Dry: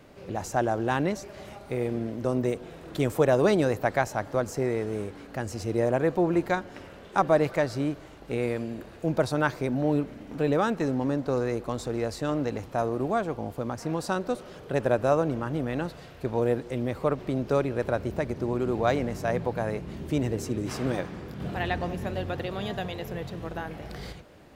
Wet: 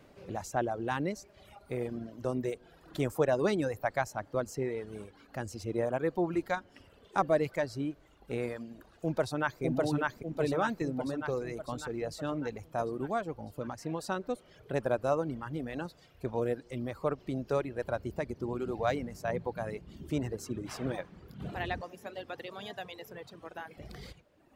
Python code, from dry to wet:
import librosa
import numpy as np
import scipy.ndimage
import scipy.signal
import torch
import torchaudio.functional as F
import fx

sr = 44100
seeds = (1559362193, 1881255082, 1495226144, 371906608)

y = fx.echo_throw(x, sr, start_s=9.01, length_s=0.61, ms=600, feedback_pct=65, wet_db=-0.5)
y = fx.highpass(y, sr, hz=430.0, slope=6, at=(21.81, 23.78))
y = fx.dereverb_blind(y, sr, rt60_s=1.4)
y = y * 10.0 ** (-5.0 / 20.0)